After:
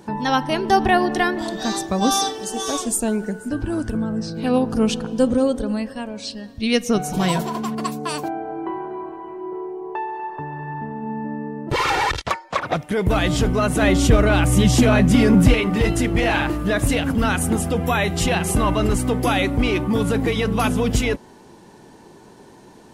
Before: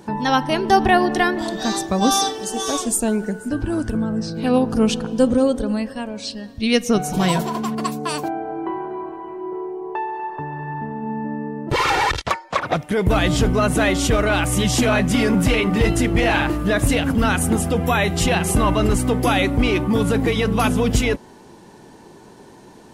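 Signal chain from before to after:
0:13.82–0:15.54: low-shelf EQ 400 Hz +7.5 dB
level −1.5 dB

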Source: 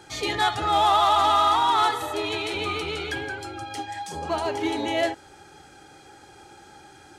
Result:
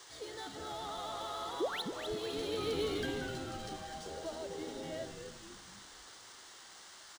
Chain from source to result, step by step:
source passing by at 0:02.84, 11 m/s, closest 1.9 metres
sound drawn into the spectrogram rise, 0:01.60–0:01.82, 290–4,600 Hz −31 dBFS
octave-band graphic EQ 125/250/500/1,000/4,000 Hz −4/−4/+11/−9/+3 dB
downward compressor 2 to 1, threshold −50 dBFS, peak gain reduction 14.5 dB
noise in a band 750–8,500 Hz −59 dBFS
parametric band 2,500 Hz −13 dB 0.25 octaves
on a send: echo with shifted repeats 252 ms, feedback 48%, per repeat −150 Hz, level −7 dB
on the sum: linearly interpolated sample-rate reduction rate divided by 3×
level +6.5 dB

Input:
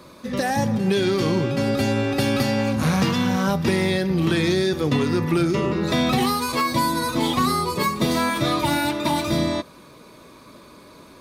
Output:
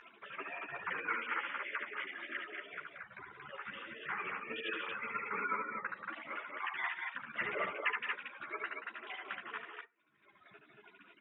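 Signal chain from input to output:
three sine waves on the formant tracks
gate on every frequency bin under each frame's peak −30 dB weak
loudspeaker in its box 240–2,100 Hz, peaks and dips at 260 Hz −8 dB, 840 Hz −7 dB, 1,400 Hz +5 dB
pitch-shifted copies added −5 semitones −9 dB
reverb reduction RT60 1.9 s
loudspeakers that aren't time-aligned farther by 25 metres −5 dB, 62 metres −11 dB, 79 metres −4 dB
convolution reverb RT60 0.30 s, pre-delay 5 ms, DRR 14.5 dB
upward compression, threshold −51 dBFS
string-ensemble chorus
level +11 dB

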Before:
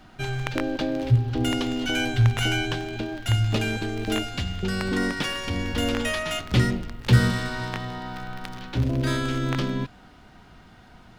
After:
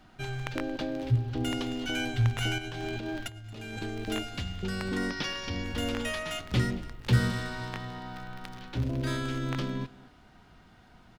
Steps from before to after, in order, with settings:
0:02.58–0:03.79: compressor whose output falls as the input rises −32 dBFS, ratio −1
0:05.10–0:05.64: high shelf with overshoot 6,700 Hz −7 dB, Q 3
single-tap delay 226 ms −20.5 dB
level −6.5 dB

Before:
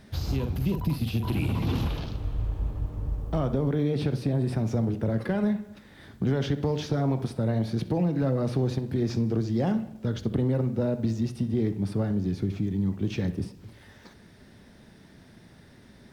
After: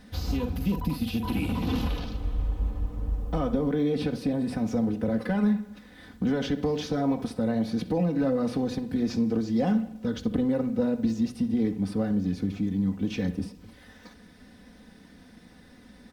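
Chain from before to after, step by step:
comb filter 4 ms, depth 74%
level −1 dB

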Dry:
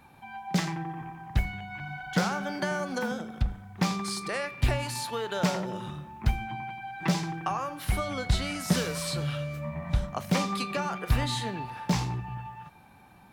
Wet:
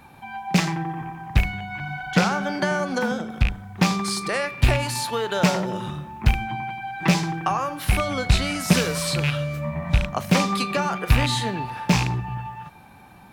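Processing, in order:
loose part that buzzes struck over −28 dBFS, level −20 dBFS
0:02.11–0:03.30: high-shelf EQ 11,000 Hz −9.5 dB
level +7 dB

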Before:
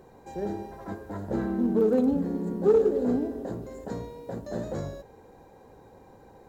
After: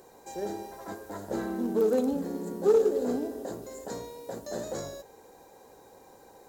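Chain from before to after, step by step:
bass and treble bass −11 dB, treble +12 dB

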